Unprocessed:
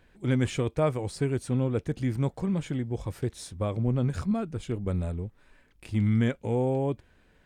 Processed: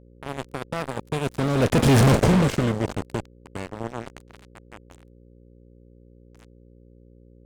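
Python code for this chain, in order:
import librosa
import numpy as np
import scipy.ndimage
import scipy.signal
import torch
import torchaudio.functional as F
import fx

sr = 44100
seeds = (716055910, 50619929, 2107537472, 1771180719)

y = fx.bin_compress(x, sr, power=0.4)
y = fx.doppler_pass(y, sr, speed_mps=25, closest_m=2.3, pass_at_s=2.04)
y = fx.fuzz(y, sr, gain_db=36.0, gate_db=-44.0)
y = fx.dmg_buzz(y, sr, base_hz=60.0, harmonics=9, level_db=-51.0, tilt_db=-4, odd_only=False)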